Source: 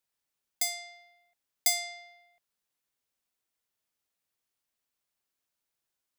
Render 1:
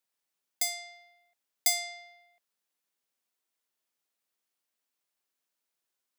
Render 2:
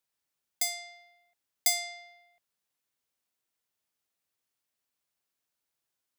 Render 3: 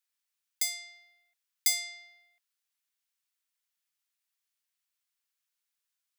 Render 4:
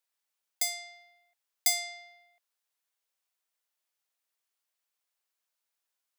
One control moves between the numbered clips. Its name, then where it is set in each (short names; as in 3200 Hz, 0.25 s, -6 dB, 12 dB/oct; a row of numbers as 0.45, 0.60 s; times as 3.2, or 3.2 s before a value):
HPF, cutoff: 190, 49, 1400, 540 Hz